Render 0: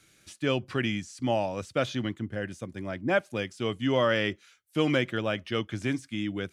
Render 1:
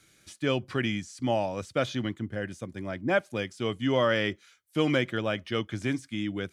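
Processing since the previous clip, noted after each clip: notch 2700 Hz, Q 18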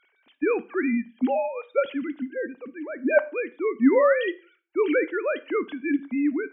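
sine-wave speech; reverb RT60 0.40 s, pre-delay 14 ms, DRR 15 dB; gain +4.5 dB

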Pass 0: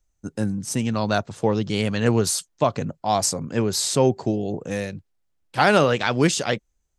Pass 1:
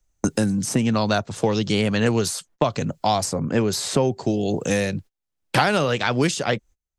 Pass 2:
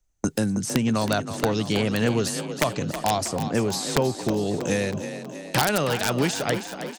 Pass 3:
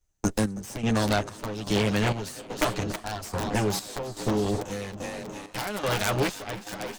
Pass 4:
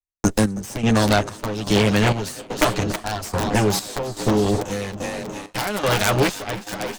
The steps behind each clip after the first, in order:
gate -45 dBFS, range -28 dB; three-band squash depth 100%
wrapped overs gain 7.5 dB; frequency-shifting echo 0.32 s, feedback 59%, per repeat +34 Hz, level -10 dB; gain -3 dB
minimum comb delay 9.7 ms; chopper 1.2 Hz, depth 65%, duty 55%
expander -37 dBFS; gain +7 dB

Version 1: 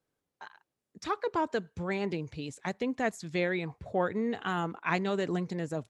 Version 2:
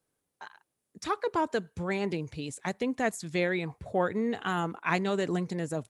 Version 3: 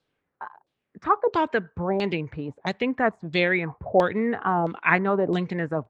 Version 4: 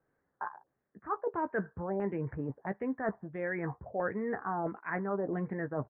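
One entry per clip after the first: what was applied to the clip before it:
bell 9800 Hz +11 dB 0.58 oct; gain +1.5 dB
LFO low-pass saw down 1.5 Hz 600–4100 Hz; gain +4.5 dB
reverse; compressor 10:1, threshold -30 dBFS, peak gain reduction 17 dB; reverse; elliptic low-pass 1800 Hz, stop band 70 dB; doubler 15 ms -11 dB

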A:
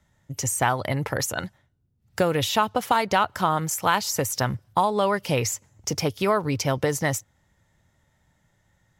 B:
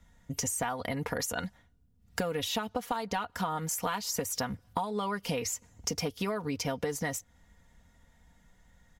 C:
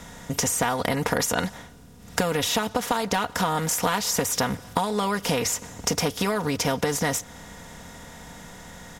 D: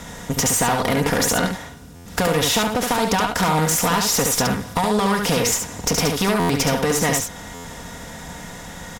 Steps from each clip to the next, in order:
low shelf 62 Hz +11.5 dB; comb 4.2 ms, depth 69%; compressor 6:1, threshold -30 dBFS, peak gain reduction 16.5 dB
per-bin compression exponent 0.6; gain +5 dB
tube stage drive 22 dB, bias 0.45; echo 71 ms -4.5 dB; stuck buffer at 1.95/6.39/7.54, samples 512, times 8; gain +8 dB

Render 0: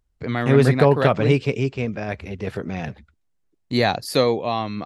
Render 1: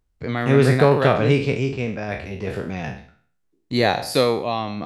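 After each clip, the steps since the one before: spectral trails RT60 0.50 s; gain -1 dB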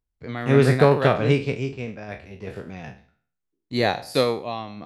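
upward expander 1.5:1, over -35 dBFS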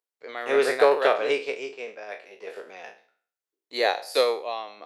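Chebyshev high-pass 450 Hz, order 3

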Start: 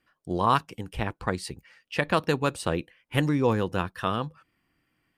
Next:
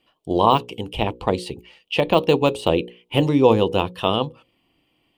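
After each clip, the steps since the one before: notches 60/120/180/240/300/360/420/480/540 Hz; de-esser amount 80%; EQ curve 160 Hz 0 dB, 430 Hz +7 dB, 940 Hz +5 dB, 1600 Hz -12 dB, 3000 Hz +11 dB, 5100 Hz -2 dB; gain +4.5 dB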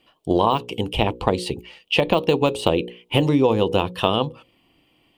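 compressor 6:1, threshold -19 dBFS, peak gain reduction 10 dB; gain +5 dB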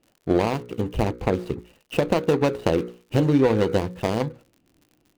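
median filter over 41 samples; crackle 57/s -43 dBFS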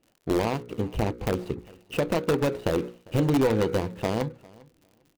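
in parallel at -6.5 dB: wrapped overs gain 12 dB; on the sum: feedback echo 0.4 s, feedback 18%, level -24 dB; gain -6 dB

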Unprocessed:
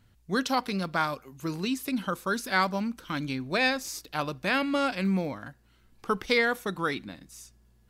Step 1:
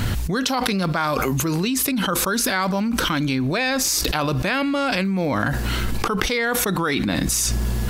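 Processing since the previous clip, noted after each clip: fast leveller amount 100%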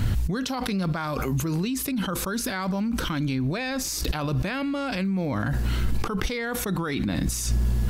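low shelf 230 Hz +10 dB; gain -9 dB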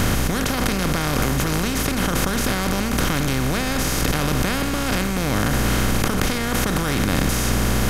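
per-bin compression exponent 0.2; gain -3 dB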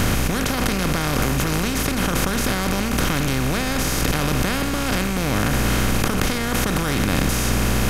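rattling part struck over -22 dBFS, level -22 dBFS

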